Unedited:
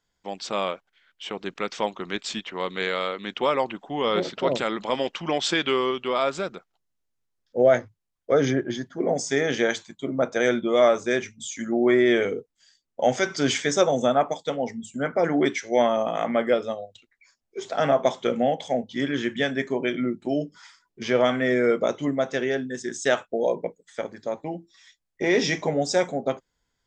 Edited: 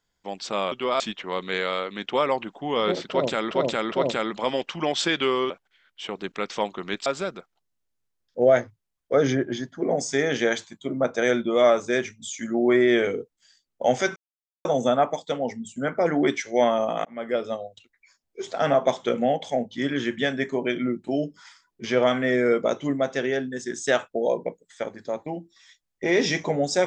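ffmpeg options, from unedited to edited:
-filter_complex "[0:a]asplit=10[a][b][c][d][e][f][g][h][i][j];[a]atrim=end=0.722[k];[b]atrim=start=5.958:end=6.242[l];[c]atrim=start=2.278:end=4.792[m];[d]atrim=start=4.378:end=4.792[n];[e]atrim=start=4.378:end=5.962[o];[f]atrim=start=0.718:end=2.282[p];[g]atrim=start=6.238:end=13.34,asetpts=PTS-STARTPTS,afade=t=out:st=7.098:d=0.004:c=hsin[q];[h]atrim=start=13.34:end=13.83,asetpts=PTS-STARTPTS,volume=0[r];[i]atrim=start=13.83:end=16.23,asetpts=PTS-STARTPTS,afade=t=in:d=0.004:c=hsin,afade=t=out:st=2.396:d=0.004:c=hsin[s];[j]atrim=start=16.23,asetpts=PTS-STARTPTS,afade=t=in:d=0.47[t];[k][l]acrossfade=d=0.004:c1=hsin:c2=hsin[u];[u][m]acrossfade=d=0.004:c1=hsin:c2=hsin[v];[v][n]acrossfade=d=0.004:c1=hsin:c2=hsin[w];[w][o]acrossfade=d=0.004:c1=hsin:c2=hsin[x];[x][p]acrossfade=d=0.004:c1=hsin:c2=hsin[y];[q][r][s][t]concat=n=4:v=0:a=1[z];[y][z]acrossfade=d=0.004:c1=hsin:c2=hsin"

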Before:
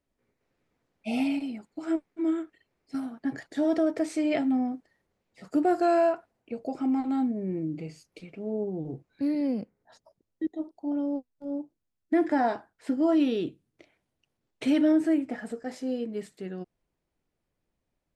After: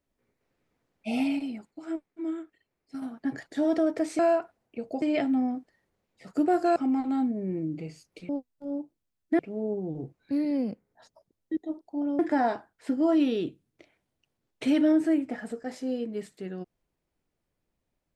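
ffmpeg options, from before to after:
-filter_complex "[0:a]asplit=9[a][b][c][d][e][f][g][h][i];[a]atrim=end=1.712[j];[b]atrim=start=1.708:end=3.022,asetpts=PTS-STARTPTS,volume=-5.5dB[k];[c]atrim=start=3.018:end=4.192[l];[d]atrim=start=5.928:end=6.762[m];[e]atrim=start=4.188:end=5.932[n];[f]atrim=start=6.758:end=8.292[o];[g]atrim=start=11.088:end=12.192[p];[h]atrim=start=8.288:end=11.092[q];[i]atrim=start=12.188[r];[j][k]acrossfade=d=0.004:c1=hsin:c2=hsin[s];[s][l]acrossfade=d=0.004:c1=hsin:c2=hsin[t];[t][m]acrossfade=d=0.004:c1=hsin:c2=hsin[u];[u][n]acrossfade=d=0.004:c1=hsin:c2=hsin[v];[v][o]acrossfade=d=0.004:c1=hsin:c2=hsin[w];[w][p]acrossfade=d=0.004:c1=hsin:c2=hsin[x];[x][q]acrossfade=d=0.004:c1=hsin:c2=hsin[y];[y][r]acrossfade=d=0.004:c1=hsin:c2=hsin"

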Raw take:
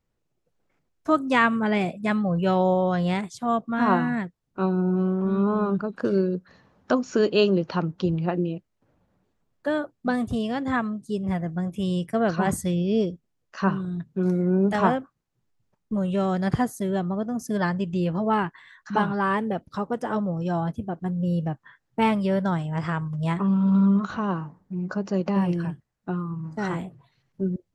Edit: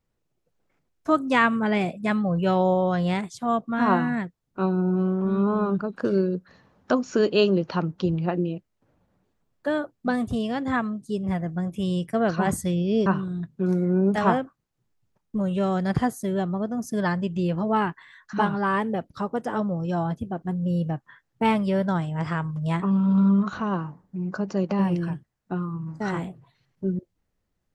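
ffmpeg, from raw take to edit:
-filter_complex "[0:a]asplit=2[a][b];[a]atrim=end=13.062[c];[b]atrim=start=13.628[d];[c][d]acrossfade=d=0.004:c1=hsin:c2=hsin"

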